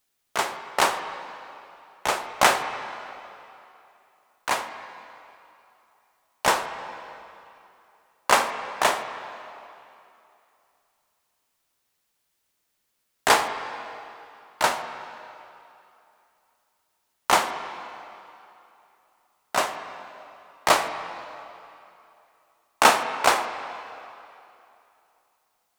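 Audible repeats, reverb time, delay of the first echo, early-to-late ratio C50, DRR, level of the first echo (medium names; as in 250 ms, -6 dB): no echo, 2.8 s, no echo, 8.5 dB, 7.5 dB, no echo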